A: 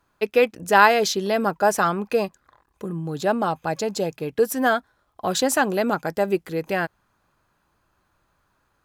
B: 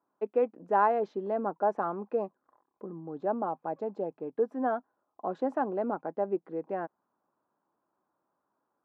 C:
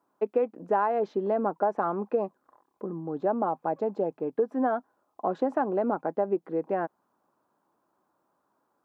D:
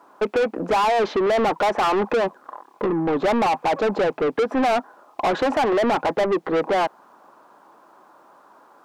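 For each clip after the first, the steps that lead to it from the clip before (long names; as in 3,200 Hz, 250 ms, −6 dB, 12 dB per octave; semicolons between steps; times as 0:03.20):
Chebyshev band-pass filter 250–950 Hz, order 2; level −7.5 dB
downward compressor 5 to 1, threshold −28 dBFS, peak gain reduction 9 dB; level +6.5 dB
mid-hump overdrive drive 32 dB, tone 2,800 Hz, clips at −12.5 dBFS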